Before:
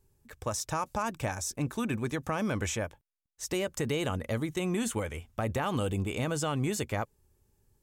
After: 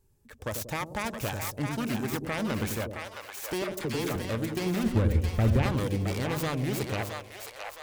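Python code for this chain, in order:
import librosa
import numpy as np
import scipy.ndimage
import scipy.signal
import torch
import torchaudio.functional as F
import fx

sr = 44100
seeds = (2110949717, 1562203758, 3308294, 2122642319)

p1 = fx.self_delay(x, sr, depth_ms=0.29)
p2 = fx.dispersion(p1, sr, late='lows', ms=50.0, hz=840.0, at=(3.64, 4.16))
p3 = fx.riaa(p2, sr, side='playback', at=(4.83, 5.63))
y = p3 + fx.echo_split(p3, sr, split_hz=570.0, low_ms=93, high_ms=667, feedback_pct=52, wet_db=-5, dry=0)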